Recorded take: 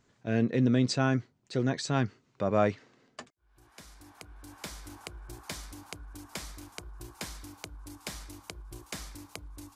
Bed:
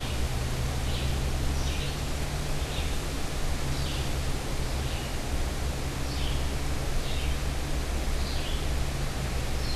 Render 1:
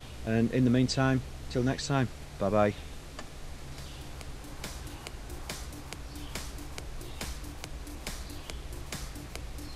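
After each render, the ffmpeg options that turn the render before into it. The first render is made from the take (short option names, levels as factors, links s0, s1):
-filter_complex "[1:a]volume=0.211[s0];[0:a][s0]amix=inputs=2:normalize=0"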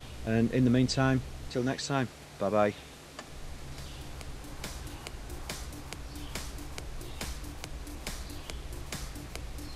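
-filter_complex "[0:a]asettb=1/sr,asplit=3[s0][s1][s2];[s0]atrim=end=1.494[s3];[s1]atrim=start=1.49:end=3.27,asetpts=PTS-STARTPTS,afade=t=in:d=0.004:c=qsin,afade=t=out:st=1.776:d=0.004:c=qsin,highpass=f=180:p=1[s4];[s2]atrim=start=3.266[s5];[s3][s4]acrossfade=d=0.004:c1=hsin:c2=qsin[s6];[s6][s5]acrossfade=d=0.004:c1=qsin:c2=hsin"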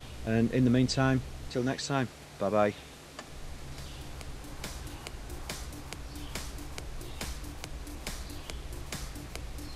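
-af anull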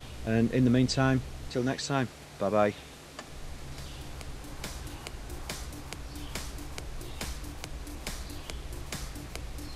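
-af "volume=1.12"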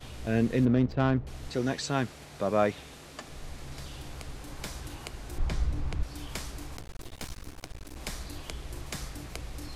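-filter_complex "[0:a]asettb=1/sr,asplit=3[s0][s1][s2];[s0]atrim=end=0.654[s3];[s1]atrim=start=0.65:end=1.27,asetpts=PTS-STARTPTS,afade=t=in:d=0.004:c=qsin,afade=t=out:st=0.616:d=0.004:c=qsin,adynamicsmooth=sensitivity=1.5:basefreq=860[s4];[s2]atrim=start=1.266[s5];[s3][s4]acrossfade=d=0.004:c1=hsin:c2=qsin[s6];[s6][s5]acrossfade=d=0.004:c1=qsin:c2=hsin,asettb=1/sr,asplit=3[s7][s8][s9];[s7]atrim=end=5.384[s10];[s8]atrim=start=5.38:end=6.03,asetpts=PTS-STARTPTS,afade=t=in:d=0.004:c=qsin,afade=t=out:st=0.646:d=0.004:c=qsin,aemphasis=mode=reproduction:type=bsi[s11];[s9]atrim=start=6.026[s12];[s10][s11]acrossfade=d=0.004:c1=hsin:c2=qsin[s13];[s13][s12]acrossfade=d=0.004:c1=qsin:c2=hsin,asettb=1/sr,asplit=3[s14][s15][s16];[s14]atrim=end=6.774[s17];[s15]atrim=start=6.77:end=7.96,asetpts=PTS-STARTPTS,afade=t=in:d=0.004:c=qsin,afade=t=out:st=1.186:d=0.004:c=qsin,aeval=exprs='max(val(0),0)':c=same[s18];[s16]atrim=start=7.956[s19];[s17][s18]acrossfade=d=0.004:c1=hsin:c2=qsin[s20];[s20][s19]acrossfade=d=0.004:c1=qsin:c2=hsin"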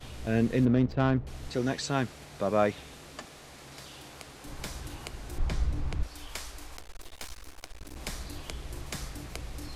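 -filter_complex "[0:a]asettb=1/sr,asplit=3[s0][s1][s2];[s0]atrim=end=3.254[s3];[s1]atrim=start=3.25:end=4.45,asetpts=PTS-STARTPTS,afade=t=in:d=0.004:c=qsin,afade=t=out:st=1.196:d=0.004:c=qsin,highpass=f=310:p=1[s4];[s2]atrim=start=4.446[s5];[s3][s4]acrossfade=d=0.004:c1=hsin:c2=qsin[s6];[s6][s5]acrossfade=d=0.004:c1=qsin:c2=hsin,asettb=1/sr,asplit=3[s7][s8][s9];[s7]atrim=end=6.074[s10];[s8]atrim=start=6.07:end=7.81,asetpts=PTS-STARTPTS,afade=t=in:d=0.004:c=qsin,afade=t=out:st=1.736:d=0.004:c=qsin,equalizer=f=150:t=o:w=2.2:g=-14[s11];[s9]atrim=start=7.806[s12];[s10][s11]acrossfade=d=0.004:c1=hsin:c2=qsin[s13];[s13][s12]acrossfade=d=0.004:c1=qsin:c2=hsin"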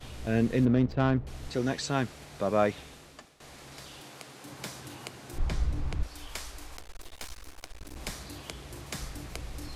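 -filter_complex "[0:a]asettb=1/sr,asplit=3[s0][s1][s2];[s0]atrim=end=4.004[s3];[s1]atrim=start=4:end=5.34,asetpts=PTS-STARTPTS,afade=t=in:d=0.004:c=qsin,afade=t=out:st=1.336:d=0.004:c=qsin,highpass=f=110:w=0.5412,highpass=f=110:w=1.3066[s4];[s2]atrim=start=5.336[s5];[s3][s4]acrossfade=d=0.004:c1=hsin:c2=qsin[s6];[s6][s5]acrossfade=d=0.004:c1=qsin:c2=hsin,asettb=1/sr,asplit=3[s7][s8][s9];[s7]atrim=end=8.124[s10];[s8]atrim=start=8.12:end=8.98,asetpts=PTS-STARTPTS,afade=t=in:d=0.004:c=qsin,afade=t=out:st=0.856:d=0.004:c=qsin,highpass=80[s11];[s9]atrim=start=8.976[s12];[s10][s11]acrossfade=d=0.004:c1=hsin:c2=qsin[s13];[s13][s12]acrossfade=d=0.004:c1=qsin:c2=hsin,asplit=2[s14][s15];[s14]atrim=end=3.4,asetpts=PTS-STARTPTS,afade=t=out:st=2.8:d=0.6:silence=0.16788[s16];[s15]atrim=start=3.4,asetpts=PTS-STARTPTS,afade=t=in:d=0.004:c=hsin:silence=0.16788[s17];[s16][s17]concat=n=2:v=0:a=1"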